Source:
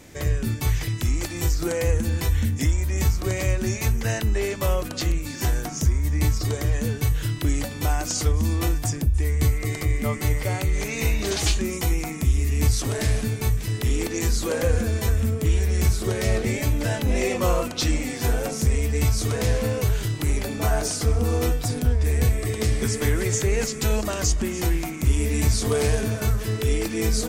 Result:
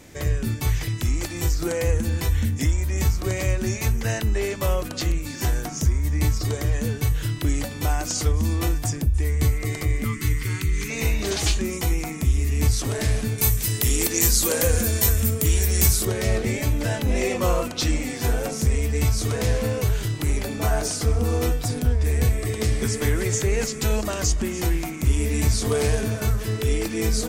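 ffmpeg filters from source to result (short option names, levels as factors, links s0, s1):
-filter_complex "[0:a]asettb=1/sr,asplit=3[s0][s1][s2];[s0]atrim=end=10.044[s3];[s1]atrim=start=10.04:end=10.9,asetpts=PTS-STARTPTS,afade=t=in:d=0.004:c=qsin,afade=t=out:st=0.856:d=0.004:c=qsin,asuperstop=centerf=640:order=4:qfactor=0.84[s4];[s2]atrim=start=10.896[s5];[s3][s4]acrossfade=d=0.004:c1=hsin:c2=qsin[s6];[s6][s5]acrossfade=d=0.004:c1=qsin:c2=hsin,asettb=1/sr,asplit=3[s7][s8][s9];[s7]atrim=end=13.384[s10];[s8]atrim=start=13.38:end=16.05,asetpts=PTS-STARTPTS,afade=t=in:d=0.004:c=qsin,afade=t=out:st=2.666:d=0.004:c=qsin,aemphasis=mode=production:type=75kf[s11];[s9]atrim=start=16.046[s12];[s10][s11]acrossfade=d=0.004:c1=hsin:c2=qsin[s13];[s13][s12]acrossfade=d=0.004:c1=qsin:c2=hsin"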